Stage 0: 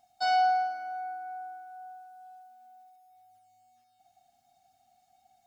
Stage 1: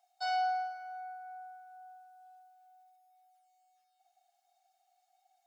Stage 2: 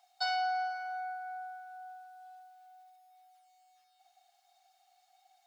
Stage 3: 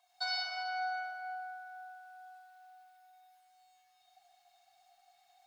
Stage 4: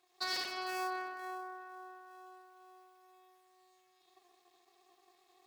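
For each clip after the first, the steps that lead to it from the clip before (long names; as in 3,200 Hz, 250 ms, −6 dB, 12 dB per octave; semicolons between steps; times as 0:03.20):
high-pass filter 640 Hz 24 dB per octave; level −6 dB
octave-band graphic EQ 500/1,000/2,000/4,000 Hz −8/+6/+3/+6 dB; downward compressor, threshold −34 dBFS, peak gain reduction 6.5 dB; level +4.5 dB
convolution reverb RT60 1.9 s, pre-delay 61 ms, DRR −3.5 dB; level −5 dB
sub-harmonics by changed cycles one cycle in 2, muted; level +1.5 dB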